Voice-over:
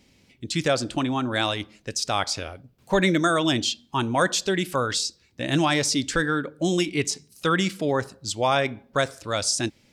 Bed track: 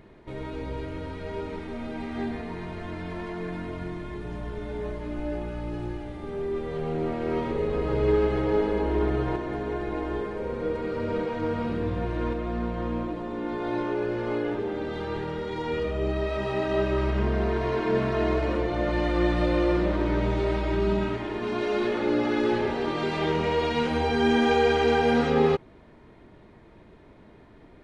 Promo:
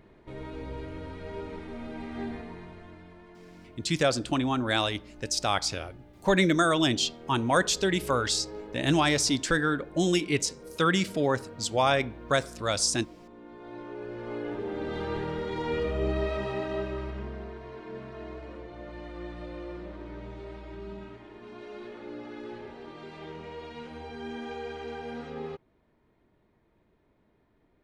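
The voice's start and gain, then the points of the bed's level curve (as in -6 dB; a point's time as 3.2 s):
3.35 s, -2.0 dB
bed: 2.34 s -4.5 dB
3.2 s -17 dB
13.48 s -17 dB
14.95 s -1 dB
16.24 s -1 dB
17.61 s -16.5 dB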